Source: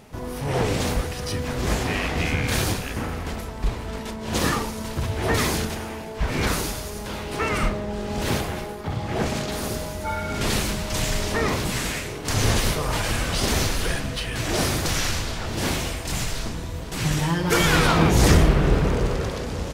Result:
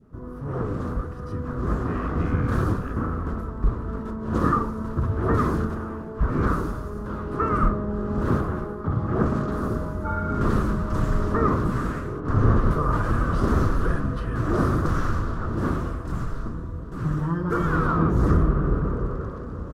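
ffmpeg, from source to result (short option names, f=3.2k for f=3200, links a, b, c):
-filter_complex "[0:a]asettb=1/sr,asplit=3[a][b][c];[a]atrim=end=12.204[d];[b]atrim=start=12.2:end=12.71,asetpts=PTS-STARTPTS,afade=t=in:d=0.004:c=qsin,afade=t=out:st=0.506:d=0.004:c=qsin,lowpass=f=2.1k:p=1[e];[c]atrim=start=12.706[f];[d][e]acrossfade=d=0.004:c1=hsin:c2=qsin[g];[g][f]acrossfade=d=0.004:c1=qsin:c2=hsin,adynamicequalizer=threshold=0.01:dfrequency=1100:dqfactor=0.91:tfrequency=1100:tqfactor=0.91:attack=5:release=100:ratio=0.375:range=3:mode=boostabove:tftype=bell,dynaudnorm=f=190:g=21:m=11.5dB,firequalizer=gain_entry='entry(320,0);entry(820,-16);entry(1200,-1);entry(2200,-25)':delay=0.05:min_phase=1,volume=-3.5dB"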